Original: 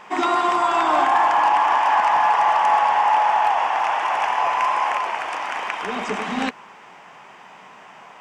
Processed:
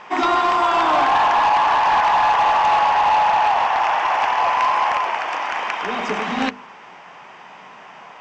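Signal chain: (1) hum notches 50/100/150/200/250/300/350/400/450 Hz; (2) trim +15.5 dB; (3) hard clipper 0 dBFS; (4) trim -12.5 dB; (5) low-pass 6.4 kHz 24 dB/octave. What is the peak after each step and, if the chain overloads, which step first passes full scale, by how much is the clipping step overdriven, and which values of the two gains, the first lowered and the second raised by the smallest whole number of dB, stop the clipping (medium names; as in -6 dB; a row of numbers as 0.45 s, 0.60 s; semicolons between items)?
-9.0 dBFS, +6.5 dBFS, 0.0 dBFS, -12.5 dBFS, -11.5 dBFS; step 2, 6.5 dB; step 2 +8.5 dB, step 4 -5.5 dB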